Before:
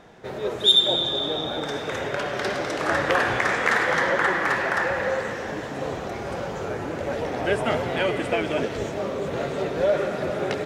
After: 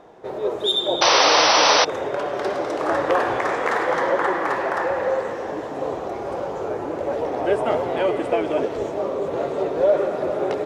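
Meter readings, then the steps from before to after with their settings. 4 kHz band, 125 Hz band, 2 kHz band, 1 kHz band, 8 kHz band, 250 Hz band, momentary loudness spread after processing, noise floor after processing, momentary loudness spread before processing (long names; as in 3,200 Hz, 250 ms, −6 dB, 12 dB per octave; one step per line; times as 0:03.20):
+0.5 dB, −5.5 dB, −1.5 dB, +6.0 dB, +12.0 dB, +1.5 dB, 13 LU, −30 dBFS, 10 LU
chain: sound drawn into the spectrogram noise, 0:01.01–0:01.85, 470–6,100 Hz −13 dBFS
flat-topped bell 580 Hz +9.5 dB 2.3 octaves
level −5.5 dB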